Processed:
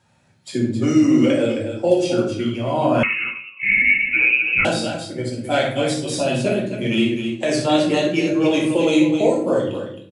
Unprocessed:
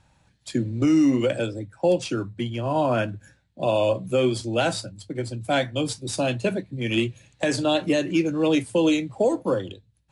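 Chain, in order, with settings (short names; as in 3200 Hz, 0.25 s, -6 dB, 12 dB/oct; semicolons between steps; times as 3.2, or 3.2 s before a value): bin magnitudes rounded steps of 15 dB; HPF 150 Hz 12 dB/oct; on a send: loudspeakers at several distances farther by 20 m -7 dB, 91 m -8 dB; on the sum: shoebox room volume 69 m³, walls mixed, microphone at 0.89 m; 3.03–4.65 inverted band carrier 2800 Hz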